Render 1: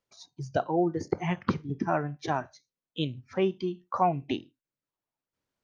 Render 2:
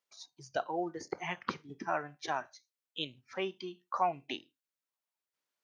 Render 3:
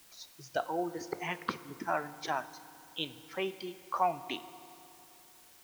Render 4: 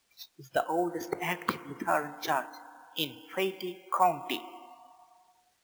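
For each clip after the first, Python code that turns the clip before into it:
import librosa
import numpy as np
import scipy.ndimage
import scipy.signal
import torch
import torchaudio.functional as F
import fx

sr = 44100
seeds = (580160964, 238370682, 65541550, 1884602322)

y1 = fx.highpass(x, sr, hz=1200.0, slope=6)
y2 = fx.quant_dither(y1, sr, seeds[0], bits=10, dither='triangular')
y2 = fx.rev_fdn(y2, sr, rt60_s=3.0, lf_ratio=1.0, hf_ratio=0.75, size_ms=19.0, drr_db=14.0)
y2 = y2 * 10.0 ** (1.0 / 20.0)
y3 = fx.noise_reduce_blind(y2, sr, reduce_db=19)
y3 = fx.sample_hold(y3, sr, seeds[1], rate_hz=18000.0, jitter_pct=0)
y3 = y3 * 10.0 ** (4.5 / 20.0)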